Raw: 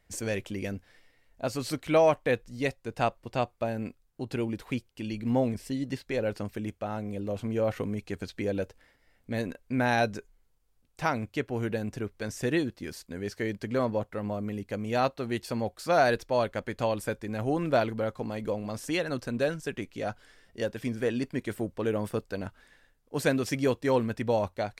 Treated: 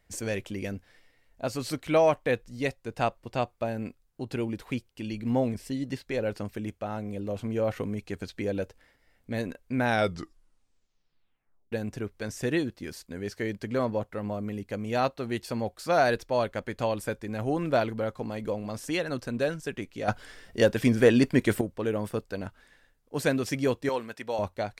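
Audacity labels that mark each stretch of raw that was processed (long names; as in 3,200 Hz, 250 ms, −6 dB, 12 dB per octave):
9.840000	9.840000	tape stop 1.88 s
20.080000	21.610000	clip gain +9.5 dB
23.890000	24.390000	high-pass filter 810 Hz 6 dB per octave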